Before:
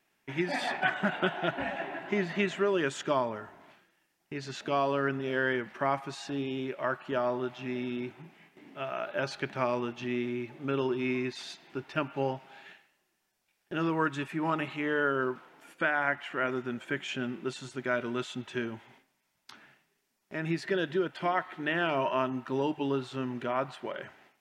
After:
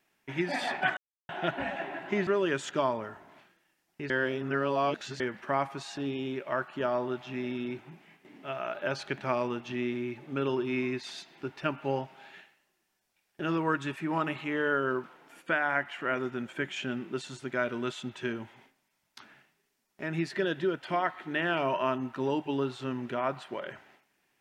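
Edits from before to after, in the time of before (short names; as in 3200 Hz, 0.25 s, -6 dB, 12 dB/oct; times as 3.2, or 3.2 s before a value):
0.97–1.29 mute
2.27–2.59 cut
4.42–5.52 reverse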